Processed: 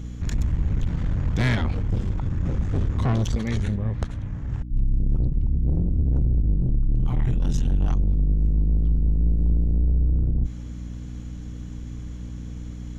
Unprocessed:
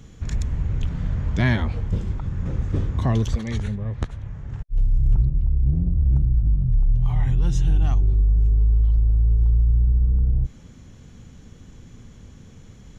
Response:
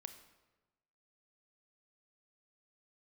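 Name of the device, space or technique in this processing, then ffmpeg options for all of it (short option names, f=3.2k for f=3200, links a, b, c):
valve amplifier with mains hum: -af "aeval=exprs='(tanh(12.6*val(0)+0.45)-tanh(0.45))/12.6':c=same,aeval=exprs='val(0)+0.0141*(sin(2*PI*60*n/s)+sin(2*PI*2*60*n/s)/2+sin(2*PI*3*60*n/s)/3+sin(2*PI*4*60*n/s)/4+sin(2*PI*5*60*n/s)/5)':c=same,volume=4dB"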